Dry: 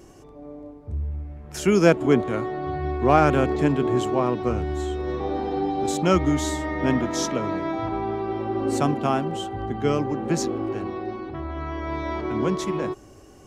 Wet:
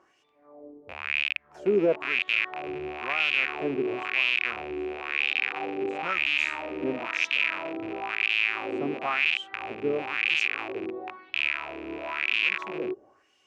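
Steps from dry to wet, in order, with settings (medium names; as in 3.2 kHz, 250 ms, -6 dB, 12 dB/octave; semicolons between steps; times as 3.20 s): rattle on loud lows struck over -33 dBFS, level -7 dBFS; peak limiter -8 dBFS, peak gain reduction 5 dB; wah-wah 0.99 Hz 370–3000 Hz, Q 2.6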